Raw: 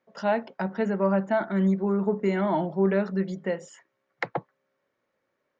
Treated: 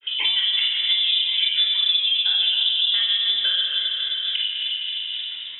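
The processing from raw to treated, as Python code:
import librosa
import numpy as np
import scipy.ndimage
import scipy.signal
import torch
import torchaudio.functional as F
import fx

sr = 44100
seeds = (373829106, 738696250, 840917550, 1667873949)

y = fx.peak_eq(x, sr, hz=770.0, db=8.0, octaves=0.35)
y = fx.notch(y, sr, hz=2500.0, q=15.0)
y = fx.granulator(y, sr, seeds[0], grain_ms=140.0, per_s=5.9, spray_ms=34.0, spread_st=3)
y = fx.echo_feedback(y, sr, ms=264, feedback_pct=38, wet_db=-10.0)
y = fx.room_shoebox(y, sr, seeds[1], volume_m3=2500.0, walls='mixed', distance_m=5.4)
y = fx.freq_invert(y, sr, carrier_hz=3700)
y = fx.band_squash(y, sr, depth_pct=100)
y = y * 10.0 ** (-2.0 / 20.0)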